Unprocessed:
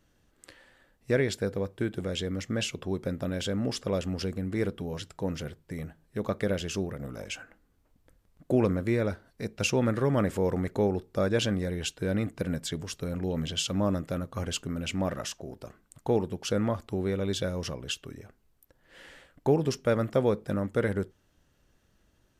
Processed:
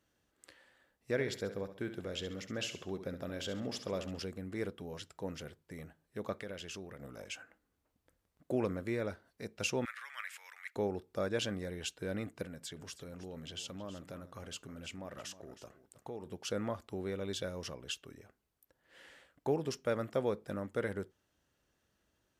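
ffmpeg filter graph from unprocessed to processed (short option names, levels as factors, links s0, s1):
-filter_complex "[0:a]asettb=1/sr,asplit=3[s0][s1][s2];[s0]atrim=end=1.114[s3];[s1]atrim=start=1.11:end=4.19,asetpts=PTS-STARTPTS,afade=t=in:d=0.004:c=qsin,afade=t=out:st=3.076:d=0.004:c=qsin,equalizer=f=8700:t=o:w=0.21:g=-10.5,aecho=1:1:68|136|204|272:0.299|0.116|0.0454|0.0177,atrim=end_sample=135828[s4];[s2]atrim=start=4.186[s5];[s3][s4]acrossfade=d=0.004:c1=hsin:c2=qsin[s6];[s6][s5]acrossfade=d=0.004:c1=qsin:c2=hsin,asettb=1/sr,asplit=3[s7][s8][s9];[s7]atrim=end=6.334[s10];[s8]atrim=start=6.33:end=7.02,asetpts=PTS-STARTPTS,afade=t=in:d=0.004:c=qsin,afade=t=out:st=0.686:d=0.004:c=qsin,equalizer=f=2400:w=0.65:g=3.5,acompressor=threshold=0.0141:ratio=2:attack=3.2:release=140:knee=1:detection=peak[s11];[s9]atrim=start=7.016[s12];[s10][s11]acrossfade=d=0.004:c1=hsin:c2=qsin[s13];[s13][s12]acrossfade=d=0.004:c1=qsin:c2=hsin,asettb=1/sr,asplit=3[s14][s15][s16];[s14]atrim=end=9.854[s17];[s15]atrim=start=9.85:end=10.76,asetpts=PTS-STARTPTS,afade=t=in:d=0.004:c=qsin,afade=t=out:st=0.906:d=0.004:c=qsin,highpass=f=1400:w=0.5412,highpass=f=1400:w=1.3066,equalizer=f=2300:t=o:w=0.83:g=8.5[s18];[s16]atrim=start=10.756[s19];[s17][s18]acrossfade=d=0.004:c1=hsin:c2=qsin[s20];[s20][s19]acrossfade=d=0.004:c1=qsin:c2=hsin,asettb=1/sr,asplit=3[s21][s22][s23];[s21]atrim=end=12.434[s24];[s22]atrim=start=12.43:end=16.26,asetpts=PTS-STARTPTS,afade=t=in:d=0.004:c=qsin,afade=t=out:st=3.826:d=0.004:c=qsin,acompressor=threshold=0.0178:ratio=2.5:attack=3.2:release=140:knee=1:detection=peak,aecho=1:1:317:0.188,atrim=end_sample=168903[s25];[s23]atrim=start=16.256[s26];[s24][s25]acrossfade=d=0.004:c1=hsin:c2=qsin[s27];[s27][s26]acrossfade=d=0.004:c1=qsin:c2=hsin,highpass=67,equalizer=f=130:t=o:w=2.4:g=-5.5,volume=0.473"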